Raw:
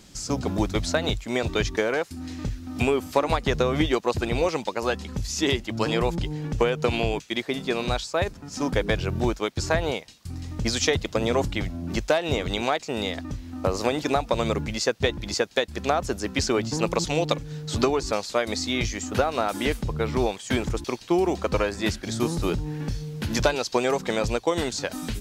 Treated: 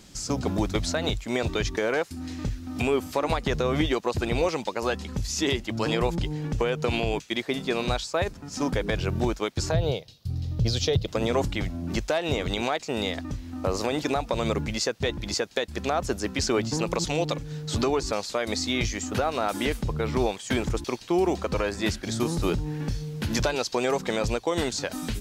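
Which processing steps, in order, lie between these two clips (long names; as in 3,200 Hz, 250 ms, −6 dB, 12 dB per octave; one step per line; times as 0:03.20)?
0:09.71–0:11.08: octave-band graphic EQ 125/250/500/1,000/2,000/4,000/8,000 Hz +11/−8/+4/−8/−10/+5/−12 dB
brickwall limiter −13.5 dBFS, peak gain reduction 7 dB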